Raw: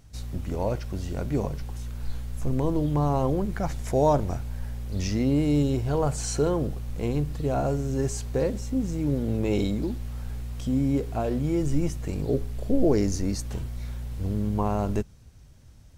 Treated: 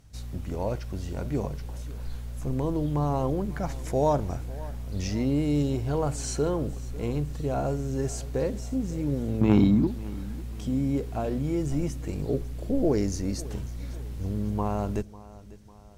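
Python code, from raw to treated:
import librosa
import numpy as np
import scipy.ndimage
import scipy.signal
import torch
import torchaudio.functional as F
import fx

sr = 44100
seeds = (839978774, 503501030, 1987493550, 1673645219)

y = fx.graphic_eq_10(x, sr, hz=(125, 250, 500, 1000, 8000), db=(8, 12, -7, 10, -10), at=(9.41, 9.87))
y = fx.cheby_harmonics(y, sr, harmonics=(3, 5), levels_db=(-17, -28), full_scale_db=-7.0)
y = fx.echo_feedback(y, sr, ms=548, feedback_pct=49, wet_db=-19)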